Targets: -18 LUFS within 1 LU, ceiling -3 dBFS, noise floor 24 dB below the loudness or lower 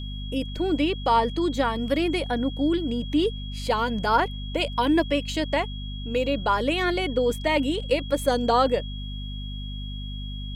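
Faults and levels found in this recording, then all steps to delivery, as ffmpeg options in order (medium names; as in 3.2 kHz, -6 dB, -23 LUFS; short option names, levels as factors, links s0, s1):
hum 50 Hz; highest harmonic 250 Hz; hum level -31 dBFS; steady tone 3.3 kHz; tone level -40 dBFS; loudness -25.5 LUFS; peak level -9.0 dBFS; loudness target -18.0 LUFS
-> -af "bandreject=f=50:t=h:w=4,bandreject=f=100:t=h:w=4,bandreject=f=150:t=h:w=4,bandreject=f=200:t=h:w=4,bandreject=f=250:t=h:w=4"
-af "bandreject=f=3300:w=30"
-af "volume=2.37,alimiter=limit=0.708:level=0:latency=1"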